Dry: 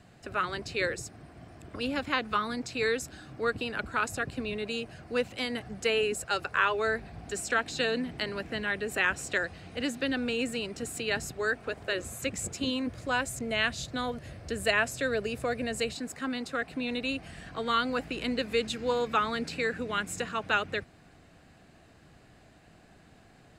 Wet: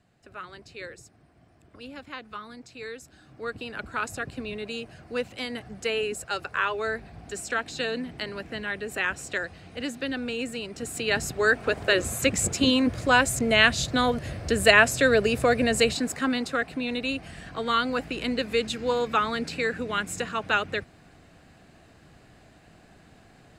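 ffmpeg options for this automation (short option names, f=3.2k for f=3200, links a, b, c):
-af "volume=9.5dB,afade=t=in:st=3.02:d=0.99:silence=0.334965,afade=t=in:st=10.68:d=1.06:silence=0.316228,afade=t=out:st=15.96:d=0.84:silence=0.473151"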